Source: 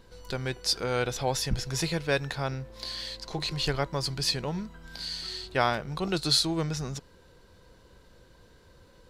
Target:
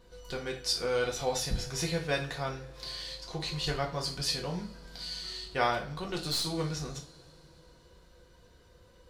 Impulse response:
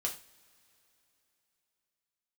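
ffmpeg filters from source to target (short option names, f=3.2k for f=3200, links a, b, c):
-filter_complex "[1:a]atrim=start_sample=2205[a];[0:a][a]afir=irnorm=-1:irlink=0,asettb=1/sr,asplit=3[b][c][d];[b]atrim=end=1.044[e];[c]atrim=start=1.04:end=1.65,asetpts=PTS-STARTPTS,afade=t=in:d=0.004:c=qsin,afade=t=out:st=0.606:d=0.004:c=qsin,aeval=exprs='val(0)+0.00631*sin(2*PI*4000*n/s)':c=same[f];[d]atrim=start=1.646[g];[e][f]acrossfade=d=0.004:c1=hsin:c2=qsin[h];[h][g]acrossfade=d=0.004:c1=qsin:c2=hsin,asettb=1/sr,asplit=3[i][j][k];[i]atrim=end=5.924[l];[j]atrim=start=5.92:end=6.47,asetpts=PTS-STARTPTS,afade=t=in:d=0.004:c=qsin,afade=t=out:st=0.546:d=0.004:c=qsin,aeval=exprs='(tanh(11.2*val(0)+0.45)-tanh(0.45))/11.2':c=same[m];[k]atrim=start=6.466[n];[l][m]acrossfade=d=0.004:c1=hsin:c2=qsin[o];[o][n]acrossfade=d=0.004:c1=qsin:c2=hsin,volume=-5dB"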